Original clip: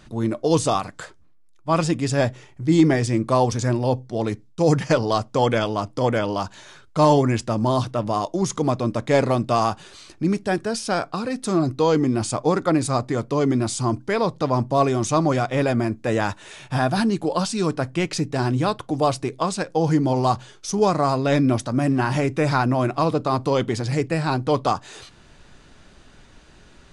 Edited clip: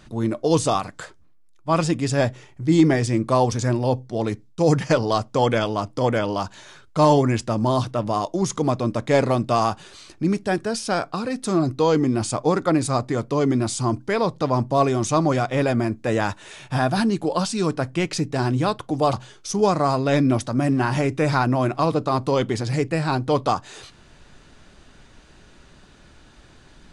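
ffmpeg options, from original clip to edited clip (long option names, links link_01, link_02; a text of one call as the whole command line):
ffmpeg -i in.wav -filter_complex "[0:a]asplit=2[link_01][link_02];[link_01]atrim=end=19.132[link_03];[link_02]atrim=start=20.318[link_04];[link_03][link_04]acrossfade=duration=0.004:curve1=hsin:curve2=hsin" out.wav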